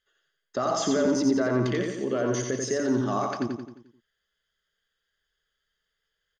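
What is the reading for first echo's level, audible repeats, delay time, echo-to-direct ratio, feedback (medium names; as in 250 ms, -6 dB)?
-4.0 dB, 6, 88 ms, -3.0 dB, 49%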